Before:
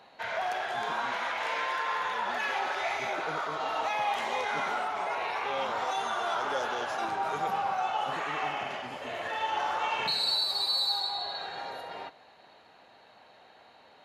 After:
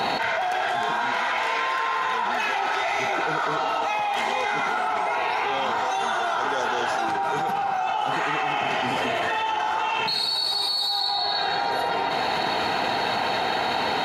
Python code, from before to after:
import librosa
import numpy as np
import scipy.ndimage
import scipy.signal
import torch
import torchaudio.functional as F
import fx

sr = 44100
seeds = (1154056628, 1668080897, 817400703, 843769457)

y = fx.notch_comb(x, sr, f0_hz=570.0)
y = fx.env_flatten(y, sr, amount_pct=100)
y = y * librosa.db_to_amplitude(2.5)